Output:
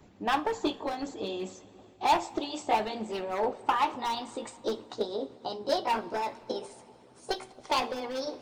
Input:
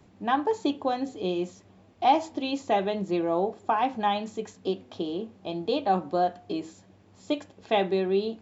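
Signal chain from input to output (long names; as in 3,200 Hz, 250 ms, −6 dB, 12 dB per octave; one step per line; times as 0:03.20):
pitch glide at a constant tempo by +5 semitones starting unshifted
in parallel at −3.5 dB: wave folding −23 dBFS
on the sum: coupled-rooms reverb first 0.29 s, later 2.7 s, from −18 dB, DRR 7 dB
harmonic and percussive parts rebalanced harmonic −11 dB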